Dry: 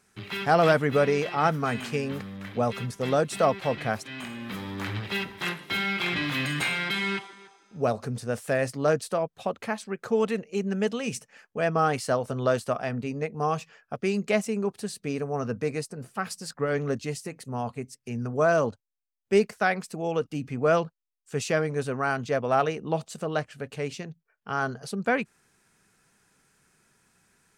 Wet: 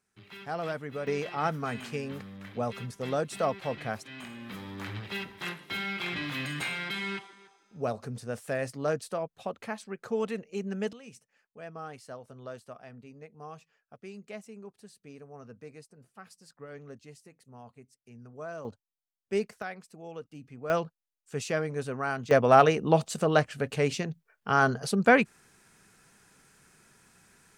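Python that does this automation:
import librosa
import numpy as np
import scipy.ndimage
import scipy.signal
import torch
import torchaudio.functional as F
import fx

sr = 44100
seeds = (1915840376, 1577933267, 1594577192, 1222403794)

y = fx.gain(x, sr, db=fx.steps((0.0, -14.0), (1.07, -6.0), (10.93, -18.0), (18.65, -8.0), (19.62, -14.5), (20.7, -4.5), (22.31, 5.0)))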